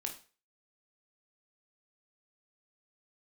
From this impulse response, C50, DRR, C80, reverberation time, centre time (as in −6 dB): 11.0 dB, 1.5 dB, 15.5 dB, 0.35 s, 16 ms